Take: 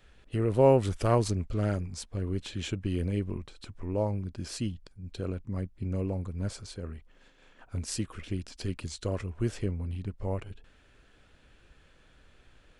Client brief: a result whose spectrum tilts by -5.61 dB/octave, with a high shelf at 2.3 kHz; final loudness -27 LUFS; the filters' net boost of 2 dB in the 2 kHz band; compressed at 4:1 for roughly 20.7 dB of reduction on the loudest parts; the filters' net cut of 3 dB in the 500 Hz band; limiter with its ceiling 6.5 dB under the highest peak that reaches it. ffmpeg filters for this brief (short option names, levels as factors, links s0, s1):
-af "equalizer=f=500:t=o:g=-3.5,equalizer=f=2000:t=o:g=6,highshelf=f=2300:g=-6,acompressor=threshold=0.00631:ratio=4,volume=12.6,alimiter=limit=0.168:level=0:latency=1"